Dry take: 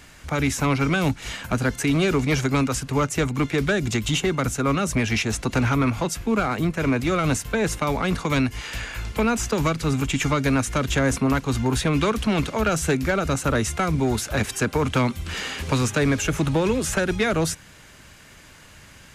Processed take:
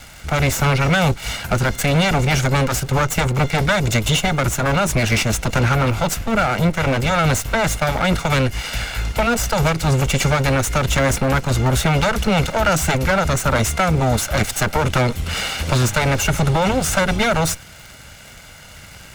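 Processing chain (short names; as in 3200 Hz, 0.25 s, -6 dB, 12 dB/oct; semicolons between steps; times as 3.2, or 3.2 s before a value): minimum comb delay 1.4 ms; crackle 98/s -37 dBFS; in parallel at -3 dB: limiter -21 dBFS, peak gain reduction 9 dB; on the sum: gain +3.5 dB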